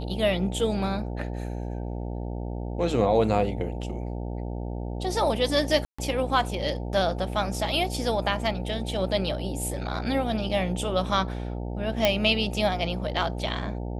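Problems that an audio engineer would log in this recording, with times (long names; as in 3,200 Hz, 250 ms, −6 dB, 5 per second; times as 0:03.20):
mains buzz 60 Hz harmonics 15 −32 dBFS
0:05.85–0:05.99: drop-out 135 ms
0:12.05: click −6 dBFS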